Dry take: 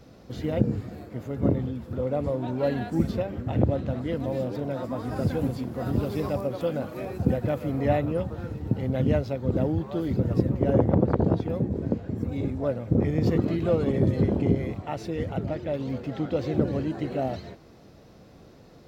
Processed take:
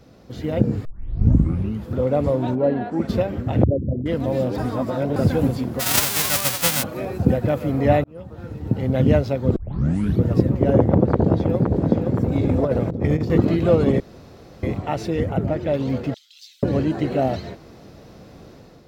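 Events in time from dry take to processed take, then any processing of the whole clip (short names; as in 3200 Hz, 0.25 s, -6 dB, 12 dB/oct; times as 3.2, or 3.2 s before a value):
0.85 tape start 1.04 s
2.54–3.08 band-pass 240 Hz -> 1100 Hz, Q 0.59
3.64–4.06 formant sharpening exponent 3
4.58–5.16 reverse
5.79–6.82 spectral whitening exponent 0.1
8.04–9 fade in
9.56 tape start 0.69 s
10.82–11.86 echo throw 0.52 s, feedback 65%, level -7 dB
12.49–13.3 negative-ratio compressor -26 dBFS, ratio -0.5
14–14.63 room tone
15.2–15.61 bell 4200 Hz -7.5 dB 1.4 oct
16.14–16.63 inverse Chebyshev high-pass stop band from 660 Hz, stop band 80 dB
whole clip: AGC gain up to 6.5 dB; gain +1 dB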